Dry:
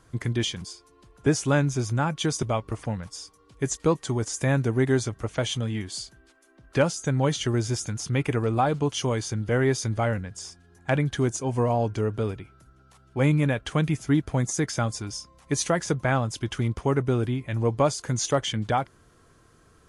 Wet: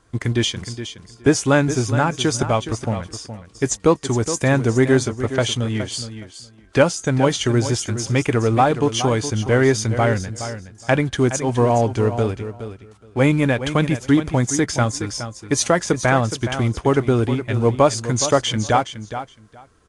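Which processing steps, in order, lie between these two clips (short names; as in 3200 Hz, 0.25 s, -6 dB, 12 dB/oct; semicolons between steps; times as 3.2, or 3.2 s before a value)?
G.711 law mismatch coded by A; bell 150 Hz -6 dB 0.36 oct; on a send: feedback echo 0.418 s, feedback 16%, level -11 dB; on the sum: downsampling 22050 Hz; gain +8 dB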